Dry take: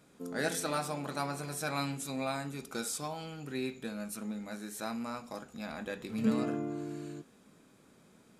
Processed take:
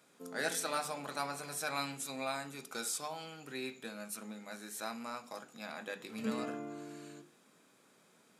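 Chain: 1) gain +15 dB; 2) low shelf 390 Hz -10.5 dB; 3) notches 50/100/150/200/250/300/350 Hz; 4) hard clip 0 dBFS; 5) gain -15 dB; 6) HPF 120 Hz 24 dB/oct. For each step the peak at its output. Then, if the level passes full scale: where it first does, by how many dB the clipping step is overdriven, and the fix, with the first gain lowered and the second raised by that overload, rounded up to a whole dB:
-3.0, -4.0, -3.5, -3.5, -18.5, -18.5 dBFS; no overload

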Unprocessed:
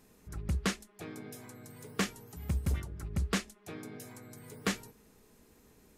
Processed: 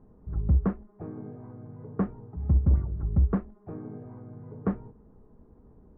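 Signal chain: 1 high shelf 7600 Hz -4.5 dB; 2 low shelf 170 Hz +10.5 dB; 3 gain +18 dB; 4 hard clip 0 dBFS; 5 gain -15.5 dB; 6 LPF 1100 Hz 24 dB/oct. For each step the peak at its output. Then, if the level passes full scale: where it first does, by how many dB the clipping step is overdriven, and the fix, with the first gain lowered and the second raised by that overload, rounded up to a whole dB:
-20.5, -14.5, +3.5, 0.0, -15.5, -15.5 dBFS; step 3, 3.5 dB; step 3 +14 dB, step 5 -11.5 dB

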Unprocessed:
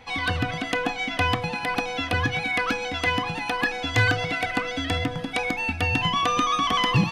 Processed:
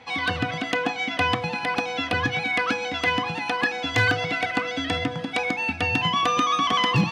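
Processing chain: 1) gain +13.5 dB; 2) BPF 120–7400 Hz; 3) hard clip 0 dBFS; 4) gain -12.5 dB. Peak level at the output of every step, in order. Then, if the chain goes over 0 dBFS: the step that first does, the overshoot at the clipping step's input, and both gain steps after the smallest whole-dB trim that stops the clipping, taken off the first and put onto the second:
+2.5, +4.5, 0.0, -12.5 dBFS; step 1, 4.5 dB; step 1 +8.5 dB, step 4 -7.5 dB

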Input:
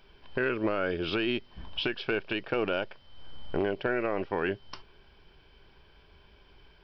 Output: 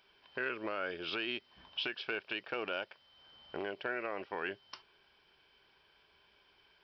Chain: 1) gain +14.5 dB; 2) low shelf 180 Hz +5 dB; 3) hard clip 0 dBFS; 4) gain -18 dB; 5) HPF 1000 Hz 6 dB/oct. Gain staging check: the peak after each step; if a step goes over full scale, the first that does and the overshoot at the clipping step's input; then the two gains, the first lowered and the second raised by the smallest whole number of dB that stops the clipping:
-3.0, -2.0, -2.0, -20.0, -22.0 dBFS; no overload

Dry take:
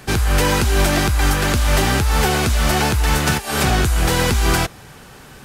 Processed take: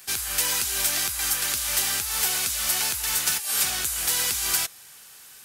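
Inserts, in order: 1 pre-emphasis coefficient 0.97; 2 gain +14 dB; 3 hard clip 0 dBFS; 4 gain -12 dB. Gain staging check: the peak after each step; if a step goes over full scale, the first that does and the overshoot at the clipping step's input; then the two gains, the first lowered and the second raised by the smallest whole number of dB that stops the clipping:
-8.0, +6.0, 0.0, -12.0 dBFS; step 2, 6.0 dB; step 2 +8 dB, step 4 -6 dB

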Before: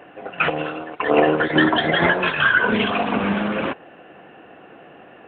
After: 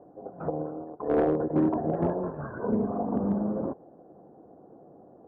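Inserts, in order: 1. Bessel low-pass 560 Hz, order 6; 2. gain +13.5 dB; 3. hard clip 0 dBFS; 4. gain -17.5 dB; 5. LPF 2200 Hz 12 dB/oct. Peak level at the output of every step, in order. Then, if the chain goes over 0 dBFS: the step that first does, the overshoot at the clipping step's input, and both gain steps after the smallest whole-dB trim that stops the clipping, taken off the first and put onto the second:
-5.5, +8.0, 0.0, -17.5, -17.0 dBFS; step 2, 8.0 dB; step 2 +5.5 dB, step 4 -9.5 dB

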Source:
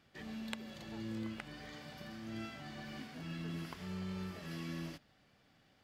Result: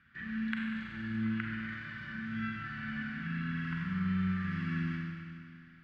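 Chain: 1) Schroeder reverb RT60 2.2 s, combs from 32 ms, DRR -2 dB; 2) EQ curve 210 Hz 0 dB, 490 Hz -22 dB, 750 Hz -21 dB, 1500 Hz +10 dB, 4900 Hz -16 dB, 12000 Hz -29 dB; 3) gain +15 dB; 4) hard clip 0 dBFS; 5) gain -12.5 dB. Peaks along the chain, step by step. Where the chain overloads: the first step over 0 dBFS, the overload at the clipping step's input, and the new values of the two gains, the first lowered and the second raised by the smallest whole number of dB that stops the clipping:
-20.0, -20.0, -5.0, -5.0, -17.5 dBFS; no overload

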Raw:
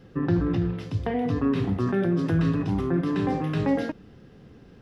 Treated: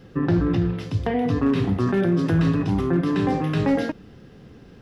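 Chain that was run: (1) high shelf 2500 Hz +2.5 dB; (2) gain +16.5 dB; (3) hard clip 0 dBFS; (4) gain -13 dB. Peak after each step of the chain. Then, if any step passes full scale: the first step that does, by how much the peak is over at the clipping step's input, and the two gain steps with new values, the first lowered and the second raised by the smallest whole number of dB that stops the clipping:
-12.0, +4.5, 0.0, -13.0 dBFS; step 2, 4.5 dB; step 2 +11.5 dB, step 4 -8 dB

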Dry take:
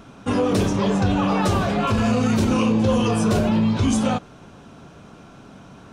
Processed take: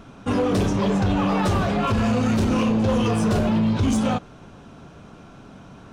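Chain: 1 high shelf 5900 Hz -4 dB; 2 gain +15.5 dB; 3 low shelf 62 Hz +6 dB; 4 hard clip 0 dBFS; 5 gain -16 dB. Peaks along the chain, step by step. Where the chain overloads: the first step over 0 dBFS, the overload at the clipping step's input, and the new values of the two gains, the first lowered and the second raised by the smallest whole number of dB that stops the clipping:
-10.5, +5.0, +7.0, 0.0, -16.0 dBFS; step 2, 7.0 dB; step 2 +8.5 dB, step 5 -9 dB

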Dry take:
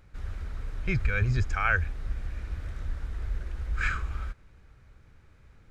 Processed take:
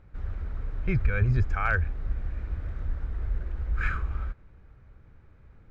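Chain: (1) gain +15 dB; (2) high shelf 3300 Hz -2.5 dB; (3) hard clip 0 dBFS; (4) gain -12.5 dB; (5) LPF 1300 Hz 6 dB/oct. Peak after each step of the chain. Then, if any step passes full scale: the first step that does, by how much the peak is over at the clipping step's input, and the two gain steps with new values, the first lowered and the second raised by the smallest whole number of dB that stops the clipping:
+3.5, +3.0, 0.0, -12.5, -12.5 dBFS; step 1, 3.0 dB; step 1 +12 dB, step 4 -9.5 dB

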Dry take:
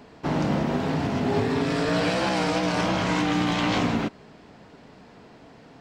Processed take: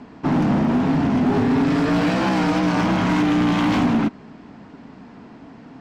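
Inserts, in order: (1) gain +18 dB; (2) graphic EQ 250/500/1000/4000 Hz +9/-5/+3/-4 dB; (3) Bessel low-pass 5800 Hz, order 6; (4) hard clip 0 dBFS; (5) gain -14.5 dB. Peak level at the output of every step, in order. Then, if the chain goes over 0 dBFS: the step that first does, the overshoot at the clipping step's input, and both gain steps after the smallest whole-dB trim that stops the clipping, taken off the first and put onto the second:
+7.0, +9.5, +9.5, 0.0, -14.5 dBFS; step 1, 9.5 dB; step 1 +8 dB, step 5 -4.5 dB

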